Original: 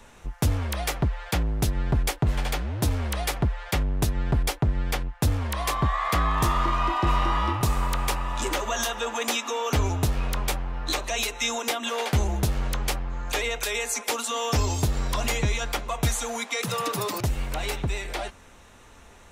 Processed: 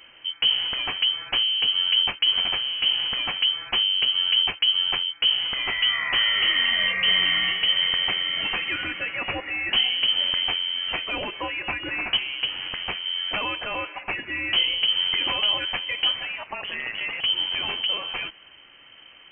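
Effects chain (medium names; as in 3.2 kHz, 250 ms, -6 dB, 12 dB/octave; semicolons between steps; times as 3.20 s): 12.16–13.04 s: high-pass 150 Hz -> 58 Hz 12 dB/octave; frequency inversion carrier 3.1 kHz; 16.35–16.99 s: ring modulator 190 Hz -> 47 Hz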